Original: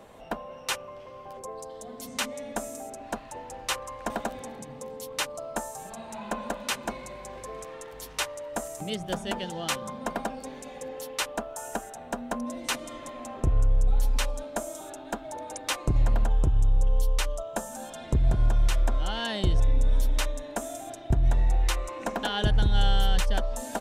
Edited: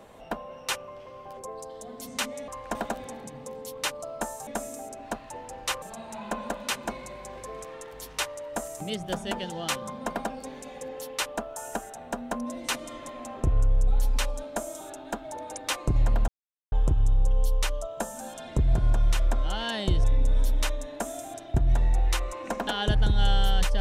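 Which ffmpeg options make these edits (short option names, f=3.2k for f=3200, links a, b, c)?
-filter_complex "[0:a]asplit=5[a][b][c][d][e];[a]atrim=end=2.482[f];[b]atrim=start=3.828:end=5.822[g];[c]atrim=start=2.478:end=3.832[h];[d]atrim=start=5.818:end=16.28,asetpts=PTS-STARTPTS,afade=t=out:st=10.458:d=0.004:c=hsin,apad=pad_dur=0.44[i];[e]atrim=start=16.28,asetpts=PTS-STARTPTS,afade=t=in:d=0.004:c=hsin[j];[f][g]acrossfade=d=0.004:c1=hsin:c2=hsin[k];[k][h]acrossfade=d=0.004:c1=hsin:c2=hsin[l];[i][j]concat=n=2:v=0:a=1[m];[l][m]acrossfade=d=0.004:c1=hsin:c2=hsin"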